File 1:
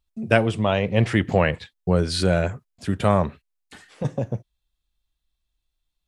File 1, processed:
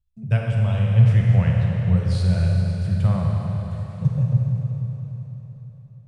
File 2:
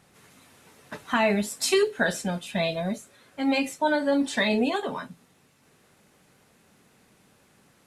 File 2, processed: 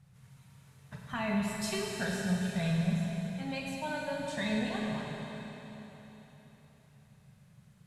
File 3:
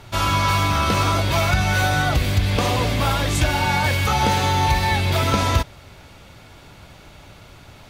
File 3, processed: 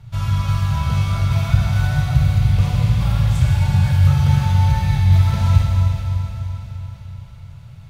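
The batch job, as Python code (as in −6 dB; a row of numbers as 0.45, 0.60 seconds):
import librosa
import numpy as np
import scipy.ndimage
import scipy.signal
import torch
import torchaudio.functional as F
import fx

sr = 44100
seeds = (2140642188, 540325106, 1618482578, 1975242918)

y = fx.low_shelf_res(x, sr, hz=200.0, db=13.5, q=3.0)
y = fx.rev_schroeder(y, sr, rt60_s=3.9, comb_ms=33, drr_db=-1.5)
y = y * librosa.db_to_amplitude(-13.0)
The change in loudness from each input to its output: +2.0, −8.5, +2.0 LU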